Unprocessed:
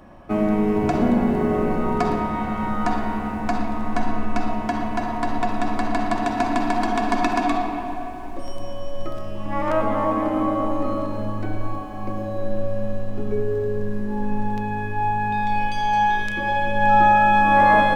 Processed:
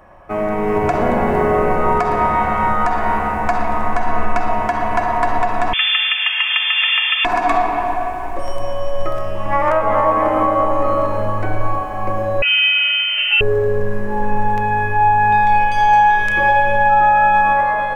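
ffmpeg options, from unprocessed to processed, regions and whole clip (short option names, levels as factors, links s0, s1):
-filter_complex "[0:a]asettb=1/sr,asplit=3[s0][s1][s2];[s0]atrim=end=5.734[s3];[s1]atrim=start=5.73:end=7.25,asetpts=PTS-STARTPTS,afade=t=in:d=0.004:c=qsin,afade=t=out:st=1.516:d=0.004:c=qsin,lowpass=f=3000:t=q:w=0.5098,lowpass=f=3000:t=q:w=0.6013,lowpass=f=3000:t=q:w=0.9,lowpass=f=3000:t=q:w=2.563,afreqshift=-3500,highpass=940[s4];[s2]atrim=start=7.246[s5];[s3][s4]acrossfade=d=0.004:c1=hsin:c2=qsin[s6];[s6][s5]acrossfade=d=0.004:c1=qsin:c2=hsin,asettb=1/sr,asplit=3[s7][s8][s9];[s7]atrim=end=12.424[s10];[s8]atrim=start=12.42:end=13.41,asetpts=PTS-STARTPTS,afade=t=in:d=0.004:c=qsin,afade=t=out:st=0.986:d=0.004:c=qsin,lowshelf=f=270:g=-11.5,acontrast=39,lowpass=f=2600:t=q:w=0.5098,lowpass=f=2600:t=q:w=0.6013,lowpass=f=2600:t=q:w=0.9,lowpass=f=2600:t=q:w=2.563,afreqshift=-3100[s11];[s9]atrim=start=13.406[s12];[s10][s11]acrossfade=d=0.004:c1=hsin:c2=qsin[s13];[s13][s12]acrossfade=d=0.004:c1=qsin:c2=hsin,equalizer=f=250:t=o:w=1:g=-11,equalizer=f=500:t=o:w=1:g=4,equalizer=f=1000:t=o:w=1:g=4,equalizer=f=2000:t=o:w=1:g=5,equalizer=f=4000:t=o:w=1:g=-6,alimiter=limit=0.237:level=0:latency=1:release=240,dynaudnorm=f=250:g=5:m=2.37"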